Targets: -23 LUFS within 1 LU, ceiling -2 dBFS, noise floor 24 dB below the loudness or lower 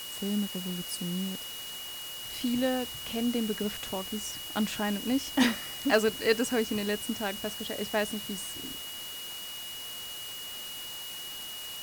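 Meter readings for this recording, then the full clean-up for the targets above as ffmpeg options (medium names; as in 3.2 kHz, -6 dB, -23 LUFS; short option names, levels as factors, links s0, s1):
steady tone 2.9 kHz; tone level -40 dBFS; noise floor -40 dBFS; noise floor target -56 dBFS; loudness -32.0 LUFS; peak level -13.0 dBFS; loudness target -23.0 LUFS
-> -af "bandreject=f=2900:w=30"
-af "afftdn=nr=16:nf=-40"
-af "volume=2.82"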